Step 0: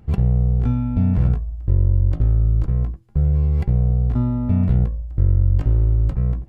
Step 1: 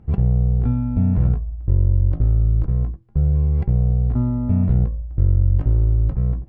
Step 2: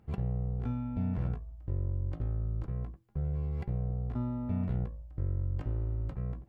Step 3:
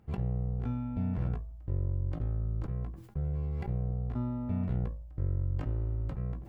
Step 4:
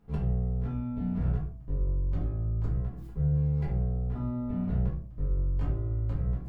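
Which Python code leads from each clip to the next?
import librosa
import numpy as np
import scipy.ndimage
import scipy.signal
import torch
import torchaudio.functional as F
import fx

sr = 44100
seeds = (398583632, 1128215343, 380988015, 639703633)

y1 = fx.lowpass(x, sr, hz=1200.0, slope=6)
y2 = fx.tilt_eq(y1, sr, slope=2.5)
y2 = y2 * 10.0 ** (-7.0 / 20.0)
y3 = fx.sustainer(y2, sr, db_per_s=78.0)
y4 = fx.room_shoebox(y3, sr, seeds[0], volume_m3=32.0, walls='mixed', distance_m=1.2)
y4 = y4 * 10.0 ** (-6.5 / 20.0)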